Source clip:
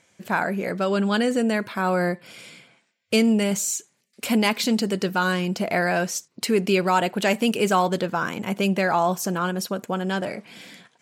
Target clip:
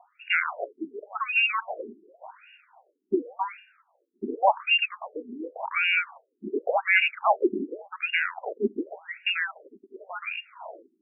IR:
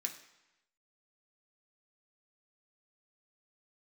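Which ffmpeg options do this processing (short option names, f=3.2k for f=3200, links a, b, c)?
-af "aexciter=amount=8.1:drive=6.6:freq=2.3k,lowpass=f=2.6k:t=q:w=0.5098,lowpass=f=2.6k:t=q:w=0.6013,lowpass=f=2.6k:t=q:w=0.9,lowpass=f=2.6k:t=q:w=2.563,afreqshift=-3000,afftfilt=real='re*between(b*sr/1024,280*pow(2100/280,0.5+0.5*sin(2*PI*0.89*pts/sr))/1.41,280*pow(2100/280,0.5+0.5*sin(2*PI*0.89*pts/sr))*1.41)':imag='im*between(b*sr/1024,280*pow(2100/280,0.5+0.5*sin(2*PI*0.89*pts/sr))/1.41,280*pow(2100/280,0.5+0.5*sin(2*PI*0.89*pts/sr))*1.41)':win_size=1024:overlap=0.75"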